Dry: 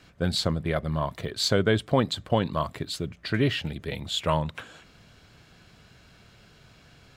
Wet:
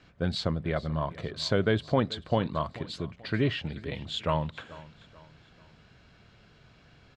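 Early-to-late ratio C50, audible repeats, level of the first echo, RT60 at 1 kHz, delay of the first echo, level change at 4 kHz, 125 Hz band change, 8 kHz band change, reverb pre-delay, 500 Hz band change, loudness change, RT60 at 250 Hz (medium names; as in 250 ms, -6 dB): no reverb, 3, -19.0 dB, no reverb, 436 ms, -5.5 dB, -2.5 dB, -11.5 dB, no reverb, -2.5 dB, -3.0 dB, no reverb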